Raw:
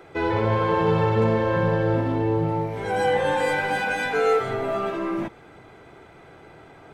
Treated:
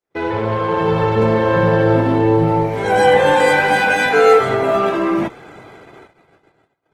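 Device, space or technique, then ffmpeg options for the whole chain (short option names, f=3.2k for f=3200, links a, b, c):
video call: -af "highpass=f=110:p=1,dynaudnorm=f=310:g=9:m=7dB,agate=range=-50dB:threshold=-43dB:ratio=16:detection=peak,volume=3.5dB" -ar 48000 -c:a libopus -b:a 20k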